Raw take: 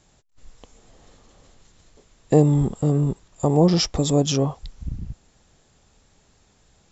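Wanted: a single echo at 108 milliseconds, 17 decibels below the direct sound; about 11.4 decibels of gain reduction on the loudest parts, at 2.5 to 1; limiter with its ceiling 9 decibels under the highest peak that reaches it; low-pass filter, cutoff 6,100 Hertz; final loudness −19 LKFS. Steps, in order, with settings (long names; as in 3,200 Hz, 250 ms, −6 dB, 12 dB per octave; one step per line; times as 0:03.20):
low-pass filter 6,100 Hz
downward compressor 2.5 to 1, threshold −28 dBFS
brickwall limiter −22 dBFS
single-tap delay 108 ms −17 dB
level +14 dB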